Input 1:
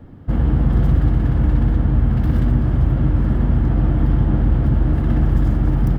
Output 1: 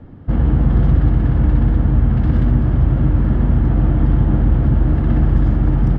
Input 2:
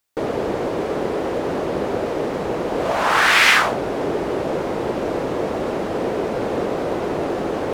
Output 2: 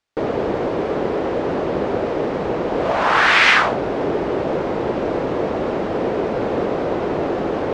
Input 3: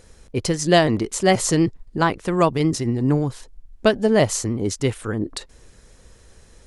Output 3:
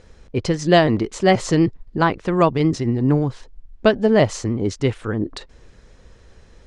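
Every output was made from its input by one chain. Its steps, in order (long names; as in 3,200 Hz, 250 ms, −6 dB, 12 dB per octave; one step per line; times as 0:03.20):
high-frequency loss of the air 120 metres
level +2 dB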